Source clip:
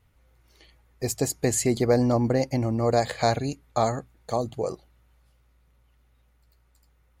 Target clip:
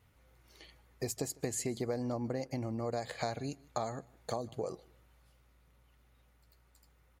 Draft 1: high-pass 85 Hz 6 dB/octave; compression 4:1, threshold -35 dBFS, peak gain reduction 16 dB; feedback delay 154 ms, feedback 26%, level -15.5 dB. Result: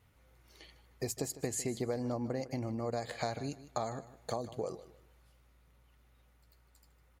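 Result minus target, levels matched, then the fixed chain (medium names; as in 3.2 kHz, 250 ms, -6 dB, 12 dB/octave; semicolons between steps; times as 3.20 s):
echo-to-direct +9 dB
high-pass 85 Hz 6 dB/octave; compression 4:1, threshold -35 dBFS, peak gain reduction 16 dB; feedback delay 154 ms, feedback 26%, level -24.5 dB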